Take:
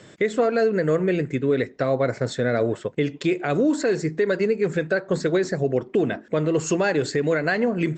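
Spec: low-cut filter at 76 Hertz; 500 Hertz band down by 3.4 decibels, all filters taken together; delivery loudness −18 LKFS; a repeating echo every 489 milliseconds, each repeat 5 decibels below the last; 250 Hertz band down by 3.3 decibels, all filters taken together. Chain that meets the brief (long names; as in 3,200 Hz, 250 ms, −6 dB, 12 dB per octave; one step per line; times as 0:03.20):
high-pass filter 76 Hz
parametric band 250 Hz −3.5 dB
parametric band 500 Hz −3 dB
repeating echo 489 ms, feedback 56%, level −5 dB
level +6.5 dB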